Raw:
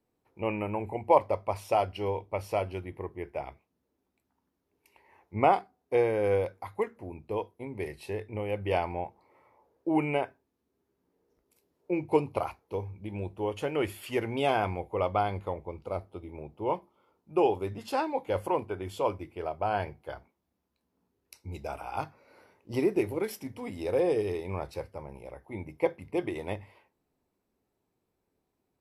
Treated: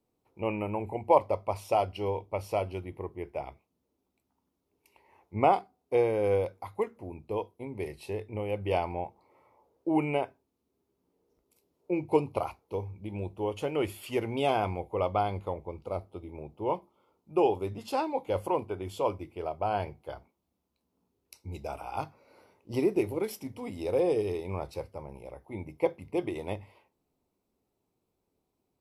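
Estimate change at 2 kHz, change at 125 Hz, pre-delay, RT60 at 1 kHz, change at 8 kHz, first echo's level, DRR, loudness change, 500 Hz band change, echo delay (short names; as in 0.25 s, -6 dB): -3.0 dB, 0.0 dB, none, none, 0.0 dB, none, none, -0.5 dB, 0.0 dB, none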